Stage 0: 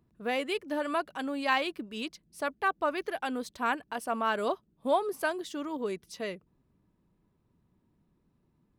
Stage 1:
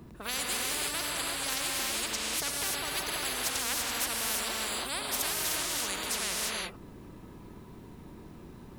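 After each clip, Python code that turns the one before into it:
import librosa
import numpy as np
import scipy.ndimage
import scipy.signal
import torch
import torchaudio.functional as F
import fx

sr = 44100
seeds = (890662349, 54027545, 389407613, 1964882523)

y = fx.rev_gated(x, sr, seeds[0], gate_ms=360, shape='rising', drr_db=-3.0)
y = fx.spectral_comp(y, sr, ratio=10.0)
y = y * 10.0 ** (-4.0 / 20.0)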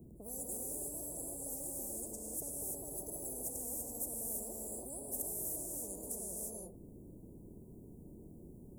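y = scipy.signal.sosfilt(scipy.signal.cheby2(4, 70, [1600.0, 3400.0], 'bandstop', fs=sr, output='sos'), x)
y = y * 10.0 ** (-5.0 / 20.0)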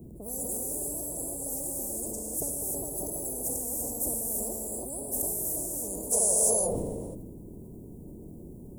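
y = fx.spec_box(x, sr, start_s=6.13, length_s=1.02, low_hz=420.0, high_hz=11000.0, gain_db=12)
y = fx.sustainer(y, sr, db_per_s=25.0)
y = y * 10.0 ** (8.0 / 20.0)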